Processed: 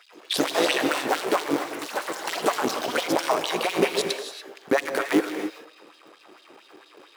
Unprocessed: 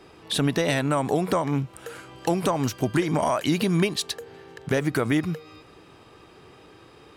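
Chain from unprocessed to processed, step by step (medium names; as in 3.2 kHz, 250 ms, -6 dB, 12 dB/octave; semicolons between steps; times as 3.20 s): cycle switcher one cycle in 3, muted; LFO high-pass sine 4.4 Hz 290–4000 Hz; gated-style reverb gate 310 ms rising, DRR 7 dB; ever faster or slower copies 115 ms, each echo +5 st, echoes 3, each echo -6 dB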